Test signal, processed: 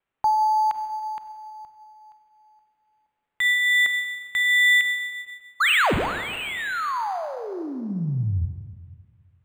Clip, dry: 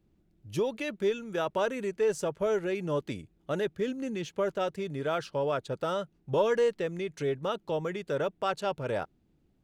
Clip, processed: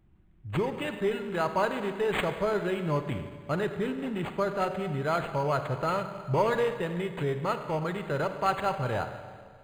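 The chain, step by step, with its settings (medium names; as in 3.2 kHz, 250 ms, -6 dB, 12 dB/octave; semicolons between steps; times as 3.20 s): ten-band graphic EQ 250 Hz -7 dB, 500 Hz -10 dB, 2 kHz -3 dB, 4 kHz -8 dB, 8 kHz +9 dB; vibrato 0.3 Hz 5.7 cents; Schroeder reverb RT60 1.8 s, combs from 31 ms, DRR 7.5 dB; decimation joined by straight lines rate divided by 8×; trim +9 dB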